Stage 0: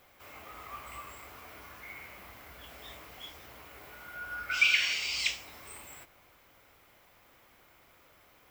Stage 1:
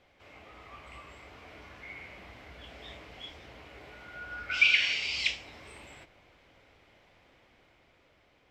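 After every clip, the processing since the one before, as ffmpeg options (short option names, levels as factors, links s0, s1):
-af "lowpass=3900,dynaudnorm=f=240:g=11:m=1.58,equalizer=f=1200:t=o:w=1:g=-7.5"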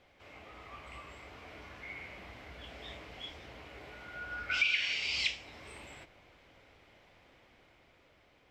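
-af "alimiter=limit=0.119:level=0:latency=1:release=459"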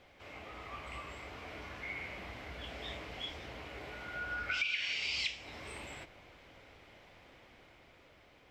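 -af "acompressor=threshold=0.0112:ratio=2.5,volume=1.5"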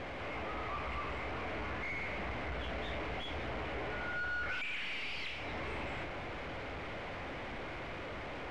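-af "aeval=exprs='val(0)+0.5*0.0106*sgn(val(0))':c=same,aeval=exprs='(tanh(89.1*val(0)+0.45)-tanh(0.45))/89.1':c=same,lowpass=2300,volume=1.78"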